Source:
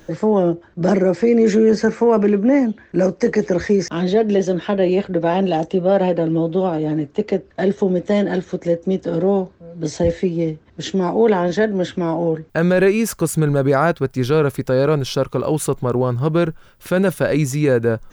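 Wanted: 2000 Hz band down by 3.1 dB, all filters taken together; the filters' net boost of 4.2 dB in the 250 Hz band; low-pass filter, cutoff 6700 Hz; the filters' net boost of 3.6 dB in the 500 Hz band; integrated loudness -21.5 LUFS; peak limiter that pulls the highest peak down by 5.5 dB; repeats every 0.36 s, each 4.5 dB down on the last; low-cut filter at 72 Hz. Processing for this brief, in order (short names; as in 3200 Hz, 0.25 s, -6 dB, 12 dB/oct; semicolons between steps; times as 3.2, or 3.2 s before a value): HPF 72 Hz; LPF 6700 Hz; bell 250 Hz +5 dB; bell 500 Hz +3 dB; bell 2000 Hz -4.5 dB; limiter -6 dBFS; feedback echo 0.36 s, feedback 60%, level -4.5 dB; gain -7 dB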